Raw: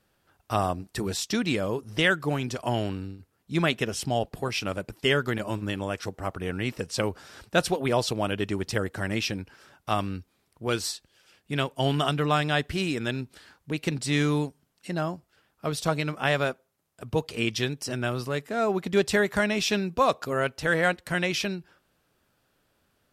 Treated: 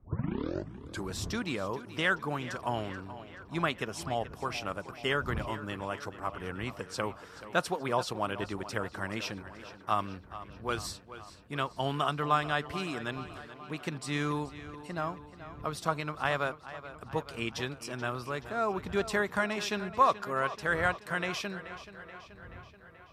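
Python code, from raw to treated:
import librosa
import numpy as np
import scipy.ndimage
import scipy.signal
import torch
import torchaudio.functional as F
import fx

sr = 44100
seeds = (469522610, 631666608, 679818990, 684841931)

y = fx.tape_start_head(x, sr, length_s=1.1)
y = fx.dmg_wind(y, sr, seeds[0], corner_hz=91.0, level_db=-38.0)
y = scipy.signal.sosfilt(scipy.signal.butter(2, 69.0, 'highpass', fs=sr, output='sos'), y)
y = fx.peak_eq(y, sr, hz=1100.0, db=10.5, octaves=0.98)
y = fx.echo_tape(y, sr, ms=430, feedback_pct=68, wet_db=-13.0, lp_hz=5800.0, drive_db=7.0, wow_cents=7)
y = y * 10.0 ** (-9.0 / 20.0)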